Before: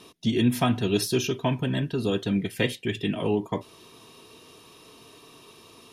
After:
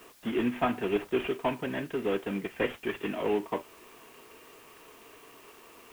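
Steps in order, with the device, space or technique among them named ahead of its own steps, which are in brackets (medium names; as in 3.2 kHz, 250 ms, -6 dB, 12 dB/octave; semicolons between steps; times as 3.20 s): army field radio (band-pass 330–3100 Hz; CVSD coder 16 kbps; white noise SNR 26 dB)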